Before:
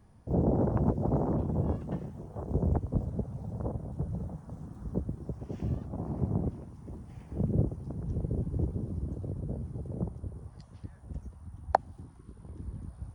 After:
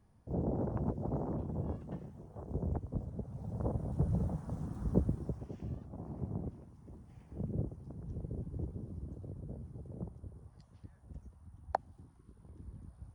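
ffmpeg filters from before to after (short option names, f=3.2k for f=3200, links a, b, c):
-af "volume=3dB,afade=t=in:st=3.21:d=0.93:silence=0.281838,afade=t=out:st=5.04:d=0.53:silence=0.251189"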